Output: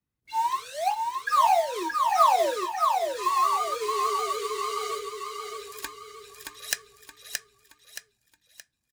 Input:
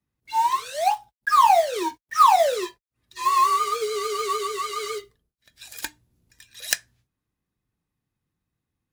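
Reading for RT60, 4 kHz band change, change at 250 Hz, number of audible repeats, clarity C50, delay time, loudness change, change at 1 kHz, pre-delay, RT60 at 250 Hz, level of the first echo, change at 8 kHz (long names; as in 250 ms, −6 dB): no reverb audible, −3.5 dB, −3.5 dB, 5, no reverb audible, 623 ms, −4.5 dB, −3.5 dB, no reverb audible, no reverb audible, −4.0 dB, −3.5 dB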